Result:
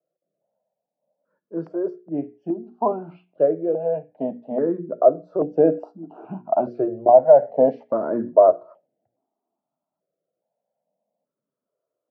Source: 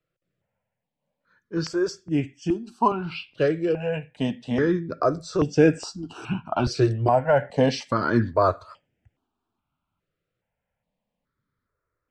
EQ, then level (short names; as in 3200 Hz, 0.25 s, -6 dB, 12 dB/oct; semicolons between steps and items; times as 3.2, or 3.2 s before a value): HPF 180 Hz 24 dB/oct; synth low-pass 650 Hz, resonance Q 4.9; notches 60/120/180/240/300/360/420/480 Hz; -3.0 dB